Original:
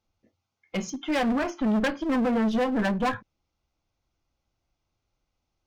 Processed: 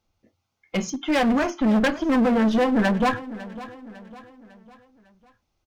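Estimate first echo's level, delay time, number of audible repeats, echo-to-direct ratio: -16.5 dB, 0.552 s, 3, -15.5 dB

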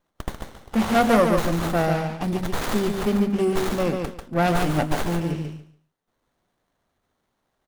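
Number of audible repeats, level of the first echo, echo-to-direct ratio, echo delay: 3, -5.0 dB, -5.0 dB, 0.143 s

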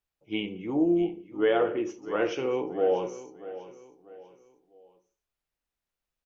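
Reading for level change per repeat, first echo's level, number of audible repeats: -8.5 dB, -15.0 dB, 3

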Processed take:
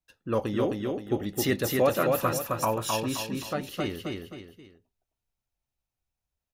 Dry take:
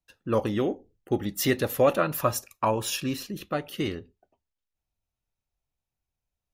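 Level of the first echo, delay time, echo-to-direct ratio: -3.0 dB, 0.263 s, -2.5 dB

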